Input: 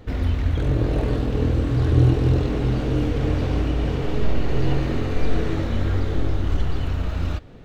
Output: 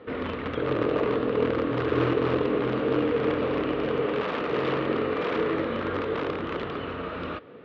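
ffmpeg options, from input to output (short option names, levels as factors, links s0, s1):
-filter_complex "[0:a]asplit=2[s0][s1];[s1]aeval=exprs='(mod(5.01*val(0)+1,2)-1)/5.01':c=same,volume=0.376[s2];[s0][s2]amix=inputs=2:normalize=0,highpass=260,equalizer=f=470:t=q:w=4:g=7,equalizer=f=770:t=q:w=4:g=-5,equalizer=f=1200:t=q:w=4:g=7,lowpass=f=3200:w=0.5412,lowpass=f=3200:w=1.3066,volume=0.794"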